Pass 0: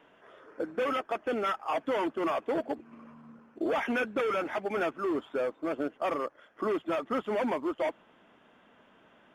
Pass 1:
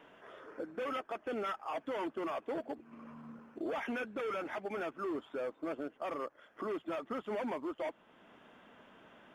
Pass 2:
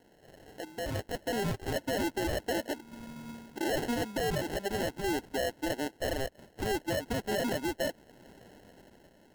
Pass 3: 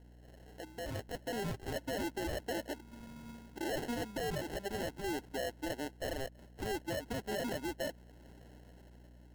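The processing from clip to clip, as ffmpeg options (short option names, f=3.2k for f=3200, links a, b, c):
-af "alimiter=level_in=8dB:limit=-24dB:level=0:latency=1:release=474,volume=-8dB,volume=1.5dB"
-af "acrusher=samples=37:mix=1:aa=0.000001,dynaudnorm=f=250:g=7:m=9dB,volume=-3dB"
-af "aeval=exprs='val(0)+0.00316*(sin(2*PI*60*n/s)+sin(2*PI*2*60*n/s)/2+sin(2*PI*3*60*n/s)/3+sin(2*PI*4*60*n/s)/4+sin(2*PI*5*60*n/s)/5)':c=same,volume=-6dB"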